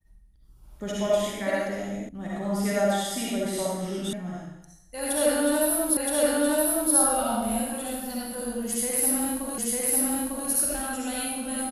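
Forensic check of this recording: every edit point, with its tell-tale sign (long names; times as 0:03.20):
0:02.09: cut off before it has died away
0:04.13: cut off before it has died away
0:05.97: the same again, the last 0.97 s
0:09.58: the same again, the last 0.9 s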